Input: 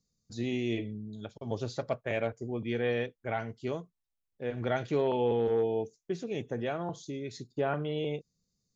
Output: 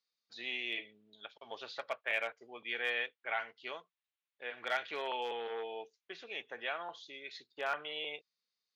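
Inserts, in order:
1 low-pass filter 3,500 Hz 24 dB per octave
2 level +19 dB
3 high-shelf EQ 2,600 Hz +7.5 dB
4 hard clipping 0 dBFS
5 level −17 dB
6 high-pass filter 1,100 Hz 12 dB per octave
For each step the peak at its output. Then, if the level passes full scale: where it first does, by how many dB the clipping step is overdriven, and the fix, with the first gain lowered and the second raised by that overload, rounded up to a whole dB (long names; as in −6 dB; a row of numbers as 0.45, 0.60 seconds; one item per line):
−17.0, +2.0, +3.0, 0.0, −17.0, −19.5 dBFS
step 2, 3.0 dB
step 2 +16 dB, step 5 −14 dB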